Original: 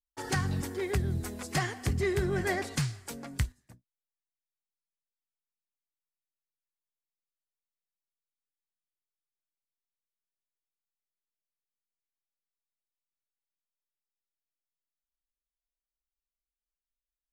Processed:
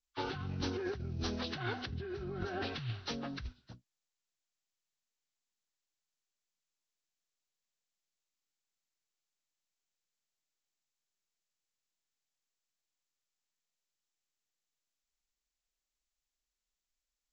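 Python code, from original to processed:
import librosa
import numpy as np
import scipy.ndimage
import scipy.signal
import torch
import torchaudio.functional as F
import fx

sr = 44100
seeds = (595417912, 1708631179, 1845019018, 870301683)

y = fx.freq_compress(x, sr, knee_hz=1000.0, ratio=1.5)
y = fx.over_compress(y, sr, threshold_db=-36.0, ratio=-1.0)
y = y * librosa.db_to_amplitude(-2.5)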